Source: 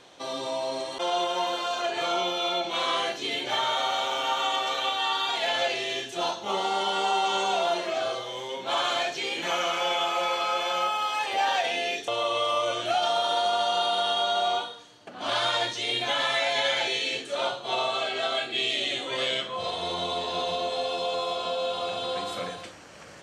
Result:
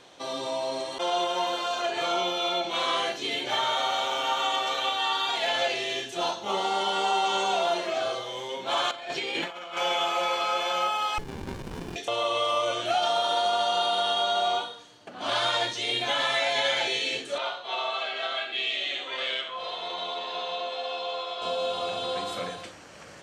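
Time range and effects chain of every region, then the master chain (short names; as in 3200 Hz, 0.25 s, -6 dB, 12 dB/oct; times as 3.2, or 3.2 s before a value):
8.91–9.77 high shelf 6700 Hz -9 dB + negative-ratio compressor -33 dBFS, ratio -0.5 + notch 6100 Hz, Q 9.6
11.18–11.96 fixed phaser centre 1100 Hz, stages 8 + running maximum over 65 samples
17.38–21.42 band-pass 2000 Hz, Q 0.52 + air absorption 58 m + echo 73 ms -9 dB
whole clip: dry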